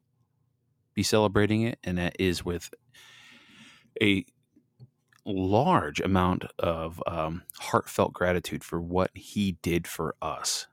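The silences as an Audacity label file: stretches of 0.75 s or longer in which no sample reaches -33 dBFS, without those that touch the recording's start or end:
2.730000	3.960000	silence
4.200000	5.260000	silence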